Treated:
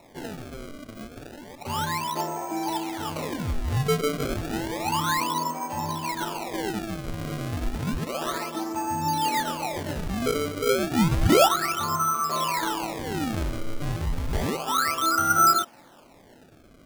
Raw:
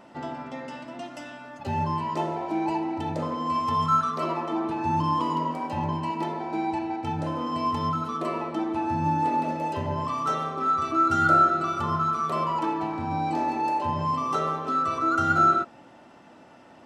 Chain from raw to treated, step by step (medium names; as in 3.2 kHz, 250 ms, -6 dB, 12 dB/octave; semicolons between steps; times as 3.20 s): peaking EQ 1.5 kHz +6 dB 2.6 oct; decimation with a swept rate 28×, swing 160% 0.31 Hz; trim -4.5 dB